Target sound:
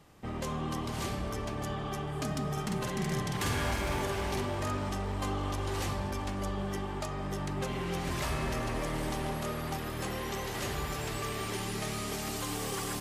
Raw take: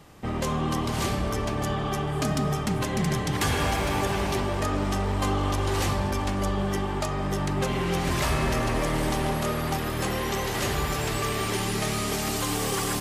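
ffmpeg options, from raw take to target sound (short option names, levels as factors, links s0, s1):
-filter_complex "[0:a]asettb=1/sr,asplit=3[s0][s1][s2];[s0]atrim=end=2.524[s3];[s1]atrim=start=2.52:end=4.9,asetpts=PTS-STARTPTS,afade=t=in:d=0.004:c=qsin,afade=t=out:st=2.376:d=0.004:c=qsin,asplit=2[s4][s5];[s5]adelay=49,volume=0.708[s6];[s4][s6]amix=inputs=2:normalize=0,atrim=end_sample=104958[s7];[s2]atrim=start=4.896[s8];[s3][s7]acrossfade=d=0.004:c1=hsin:c2=qsin[s9];[s9][s8]acrossfade=d=0.004:c1=qsin:c2=hsin,volume=0.398"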